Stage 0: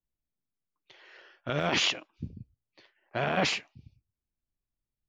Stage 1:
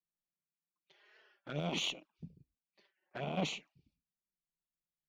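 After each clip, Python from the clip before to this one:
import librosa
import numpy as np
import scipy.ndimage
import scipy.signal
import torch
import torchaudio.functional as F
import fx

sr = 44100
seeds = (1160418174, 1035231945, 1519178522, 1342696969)

y = fx.env_flanger(x, sr, rest_ms=5.7, full_db=-27.0)
y = fx.low_shelf_res(y, sr, hz=130.0, db=-6.5, q=3.0)
y = fx.cheby_harmonics(y, sr, harmonics=(3, 6), levels_db=(-22, -35), full_scale_db=-14.5)
y = y * 10.0 ** (-6.5 / 20.0)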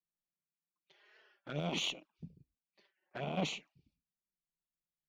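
y = x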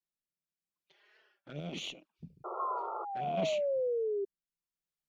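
y = fx.spec_paint(x, sr, seeds[0], shape='fall', start_s=2.59, length_s=1.66, low_hz=390.0, high_hz=1100.0, level_db=-31.0)
y = fx.rotary(y, sr, hz=0.75)
y = fx.spec_paint(y, sr, seeds[1], shape='noise', start_s=2.44, length_s=0.61, low_hz=340.0, high_hz=1400.0, level_db=-40.0)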